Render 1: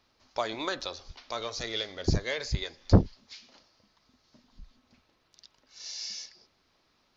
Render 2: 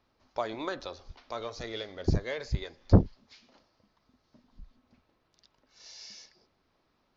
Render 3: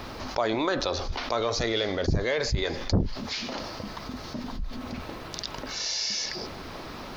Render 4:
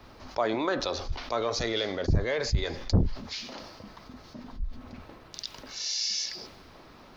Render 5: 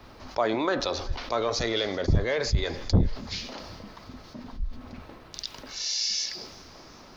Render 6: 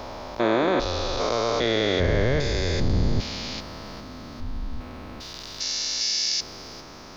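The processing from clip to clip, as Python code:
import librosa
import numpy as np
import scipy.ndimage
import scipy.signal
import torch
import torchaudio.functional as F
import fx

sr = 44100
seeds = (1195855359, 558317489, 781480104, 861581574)

y1 = fx.high_shelf(x, sr, hz=2200.0, db=-11.5)
y2 = fx.env_flatten(y1, sr, amount_pct=70)
y2 = F.gain(torch.from_numpy(y2), -6.0).numpy()
y3 = fx.band_widen(y2, sr, depth_pct=70)
y3 = F.gain(torch.from_numpy(y3), -3.0).numpy()
y4 = fx.echo_feedback(y3, sr, ms=378, feedback_pct=59, wet_db=-23)
y4 = F.gain(torch.from_numpy(y4), 2.0).numpy()
y5 = fx.spec_steps(y4, sr, hold_ms=400)
y5 = F.gain(torch.from_numpy(y5), 7.5).numpy()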